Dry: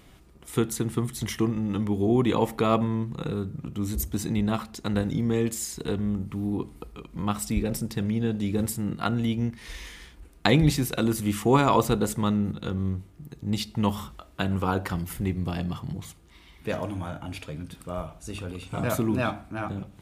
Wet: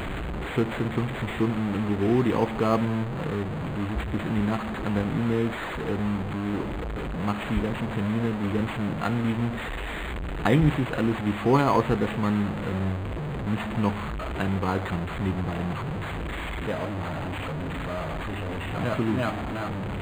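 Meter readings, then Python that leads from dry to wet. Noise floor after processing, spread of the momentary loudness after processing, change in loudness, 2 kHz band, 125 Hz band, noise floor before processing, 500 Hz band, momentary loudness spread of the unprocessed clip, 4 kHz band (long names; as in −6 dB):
−32 dBFS, 9 LU, 0.0 dB, +4.0 dB, +0.5 dB, −53 dBFS, +0.5 dB, 14 LU, −2.5 dB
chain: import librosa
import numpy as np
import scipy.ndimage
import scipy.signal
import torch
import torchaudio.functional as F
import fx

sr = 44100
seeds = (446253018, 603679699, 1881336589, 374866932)

y = fx.delta_mod(x, sr, bps=64000, step_db=-24.5)
y = np.interp(np.arange(len(y)), np.arange(len(y))[::8], y[::8])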